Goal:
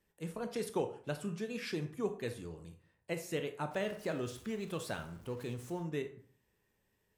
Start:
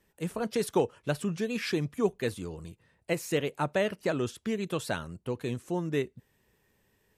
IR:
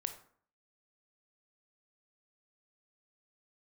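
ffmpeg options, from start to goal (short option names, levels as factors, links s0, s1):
-filter_complex "[0:a]asettb=1/sr,asplit=3[s0][s1][s2];[s0]atrim=end=3.714[s3];[s1]atrim=start=3.71:end=5.83,asetpts=PTS-STARTPTS,afade=t=in:d=0.004:c=qsin,afade=t=out:st=2.116:d=0.004:c=qsin,aeval=exprs='val(0)+0.5*0.00631*sgn(val(0))':c=same[s4];[s2]atrim=start=5.826[s5];[s3][s4]acrossfade=d=0.004:c1=hsin:c2=qsin[s6];[s6][s5]acrossfade=d=0.004:c1=qsin:c2=hsin[s7];[1:a]atrim=start_sample=2205,asetrate=48510,aresample=44100[s8];[s7][s8]afir=irnorm=-1:irlink=0,volume=0.473"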